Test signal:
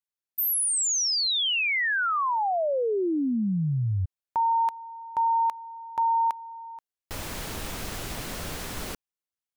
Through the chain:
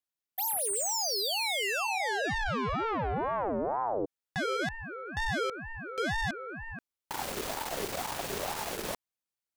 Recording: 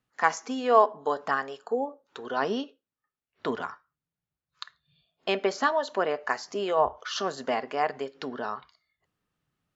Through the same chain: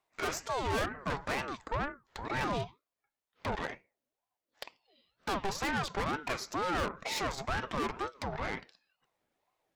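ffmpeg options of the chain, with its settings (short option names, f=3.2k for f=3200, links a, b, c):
-af "aeval=exprs='(tanh(50.1*val(0)+0.65)-tanh(0.65))/50.1':c=same,aeval=exprs='val(0)*sin(2*PI*650*n/s+650*0.4/2.1*sin(2*PI*2.1*n/s))':c=same,volume=6dB"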